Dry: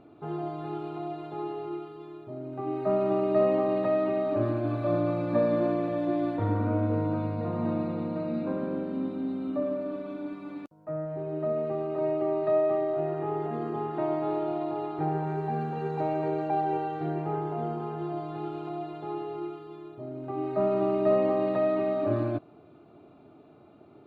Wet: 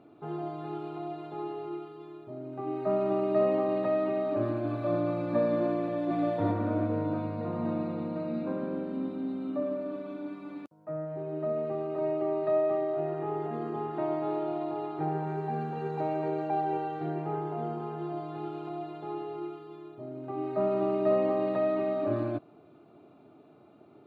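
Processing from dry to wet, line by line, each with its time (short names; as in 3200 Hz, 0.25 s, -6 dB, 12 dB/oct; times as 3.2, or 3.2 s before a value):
5.75–6.16 echo throw 0.35 s, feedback 45%, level -0.5 dB
whole clip: HPF 110 Hz; gain -2 dB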